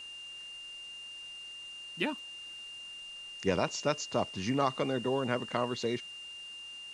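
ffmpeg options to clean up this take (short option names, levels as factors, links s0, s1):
-af "bandreject=f=2800:w=30,afftdn=nr=30:nf=-46"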